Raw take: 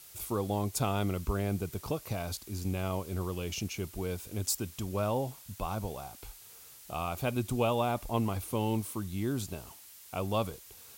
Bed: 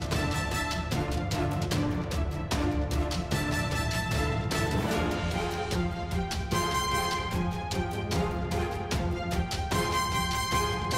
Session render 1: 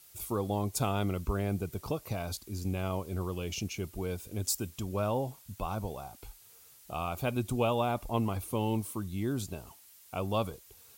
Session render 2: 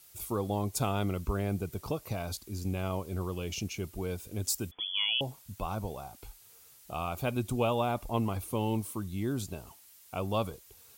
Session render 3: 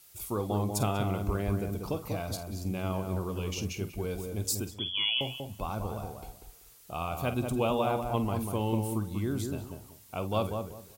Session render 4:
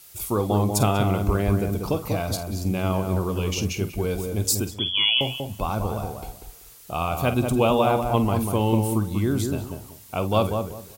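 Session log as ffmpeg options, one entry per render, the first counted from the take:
-af "afftdn=nr=6:nf=-53"
-filter_complex "[0:a]asettb=1/sr,asplit=3[a][b][c];[a]atrim=end=4.714[d];[b]atrim=start=4.71:end=5.21,asetpts=PTS-STARTPTS,afade=t=in:d=0.004:c=qsin,afade=t=out:st=0.496:d=0.004:c=qsin,lowpass=f=3k:t=q:w=0.5098,lowpass=f=3k:t=q:w=0.6013,lowpass=f=3k:t=q:w=0.9,lowpass=f=3k:t=q:w=2.563,afreqshift=-3500[e];[c]atrim=start=5.206[f];[d][e]acrossfade=d=0.004:c1=hsin:c2=qsin[g];[g][f]acrossfade=d=0.004:c1=qsin:c2=hsin"
-filter_complex "[0:a]asplit=2[a][b];[b]adelay=48,volume=-12dB[c];[a][c]amix=inputs=2:normalize=0,asplit=2[d][e];[e]adelay=191,lowpass=f=1.1k:p=1,volume=-4dB,asplit=2[f][g];[g]adelay=191,lowpass=f=1.1k:p=1,volume=0.25,asplit=2[h][i];[i]adelay=191,lowpass=f=1.1k:p=1,volume=0.25[j];[d][f][h][j]amix=inputs=4:normalize=0"
-af "volume=8.5dB"

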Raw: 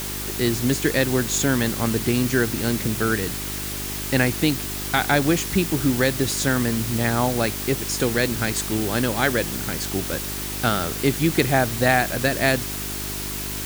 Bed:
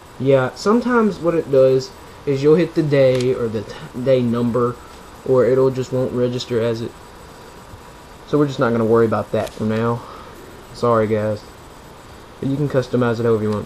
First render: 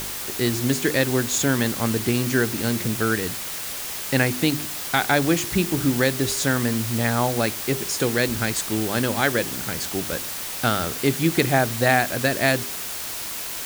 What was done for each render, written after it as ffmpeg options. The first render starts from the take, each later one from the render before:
-af "bandreject=f=50:t=h:w=4,bandreject=f=100:t=h:w=4,bandreject=f=150:t=h:w=4,bandreject=f=200:t=h:w=4,bandreject=f=250:t=h:w=4,bandreject=f=300:t=h:w=4,bandreject=f=350:t=h:w=4,bandreject=f=400:t=h:w=4"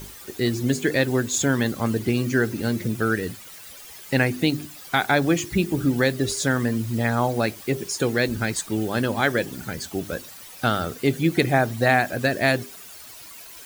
-af "afftdn=nr=14:nf=-31"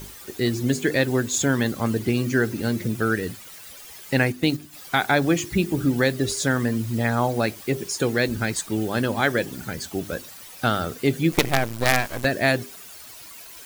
-filter_complex "[0:a]asplit=3[a][b][c];[a]afade=t=out:st=4.16:d=0.02[d];[b]agate=range=-7dB:threshold=-26dB:ratio=16:release=100:detection=peak,afade=t=in:st=4.16:d=0.02,afade=t=out:st=4.72:d=0.02[e];[c]afade=t=in:st=4.72:d=0.02[f];[d][e][f]amix=inputs=3:normalize=0,asettb=1/sr,asplit=3[g][h][i];[g]atrim=end=11.324[j];[h]atrim=start=11.32:end=12.25,asetpts=PTS-STARTPTS,afade=t=in:d=0.004:c=qsin,afade=t=out:st=0.926:d=0.004:c=qsin,acrusher=bits=3:dc=4:mix=0:aa=0.000001[k];[i]atrim=start=12.246[l];[j][k]acrossfade=d=0.004:c1=hsin:c2=qsin[m];[m][l]acrossfade=d=0.004:c1=qsin:c2=hsin"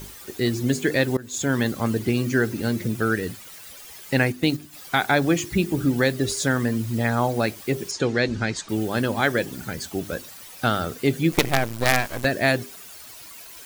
-filter_complex "[0:a]asettb=1/sr,asplit=3[a][b][c];[a]atrim=end=7.914[d];[b]atrim=start=7.91:end=8.69,asetpts=PTS-STARTPTS,afade=t=in:d=0.004:c=qsin,afade=t=out:st=0.776:d=0.004:c=qsin,lowpass=f=6.6k:w=0.5412,lowpass=f=6.6k:w=1.3066[e];[c]atrim=start=8.686[f];[d][e]acrossfade=d=0.004:c1=hsin:c2=qsin[g];[g][f]acrossfade=d=0.004:c1=qsin:c2=hsin,asplit=2[h][i];[h]atrim=end=1.17,asetpts=PTS-STARTPTS,afade=t=out:st=1.166:d=0.004:c=hsin:silence=0.0841395[j];[i]atrim=start=1.17,asetpts=PTS-STARTPTS,afade=t=in:d=0.4:silence=0.0841395[k];[j][k]concat=n=2:v=0:a=1"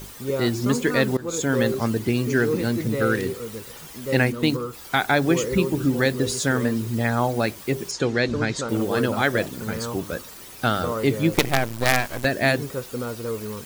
-filter_complex "[1:a]volume=-12.5dB[a];[0:a][a]amix=inputs=2:normalize=0"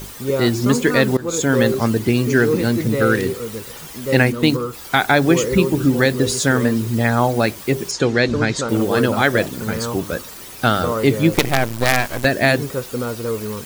-af "volume=5.5dB,alimiter=limit=-2dB:level=0:latency=1"

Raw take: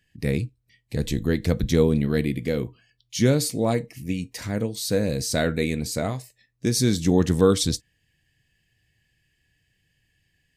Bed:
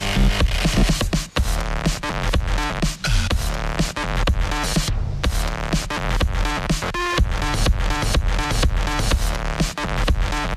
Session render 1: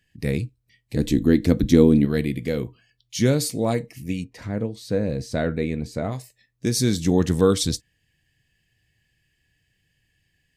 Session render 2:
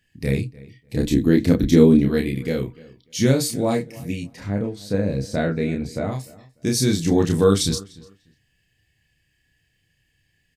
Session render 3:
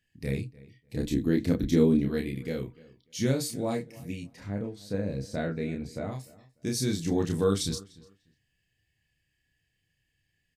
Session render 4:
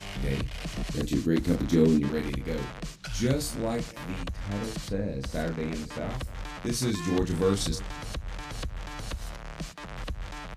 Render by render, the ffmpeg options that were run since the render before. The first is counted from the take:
-filter_complex "[0:a]asettb=1/sr,asplit=3[a][b][c];[a]atrim=end=0.954[d];[b]atrim=start=0.95:end=2.05,asetpts=PTS-STARTPTS,afade=t=in:d=0.004:c=qsin,afade=t=out:st=1.096:d=0.004:c=qsin,equalizer=f=280:w=2.2:g=12.5[e];[c]atrim=start=2.046[f];[d][e]acrossfade=d=0.004:c1=hsin:c2=qsin[g];[g][f]acrossfade=d=0.004:c1=qsin:c2=hsin,asplit=3[h][i][j];[h]afade=t=out:st=4.23:d=0.02[k];[i]lowpass=f=1.4k:p=1,afade=t=in:st=4.23:d=0.02,afade=t=out:st=6.11:d=0.02[l];[j]afade=t=in:st=6.11:d=0.02[m];[k][l][m]amix=inputs=3:normalize=0"
-filter_complex "[0:a]asplit=2[a][b];[b]adelay=30,volume=-3dB[c];[a][c]amix=inputs=2:normalize=0,asplit=2[d][e];[e]adelay=297,lowpass=f=3.5k:p=1,volume=-21dB,asplit=2[f][g];[g]adelay=297,lowpass=f=3.5k:p=1,volume=0.2[h];[d][f][h]amix=inputs=3:normalize=0"
-af "volume=-9dB"
-filter_complex "[1:a]volume=-16.5dB[a];[0:a][a]amix=inputs=2:normalize=0"

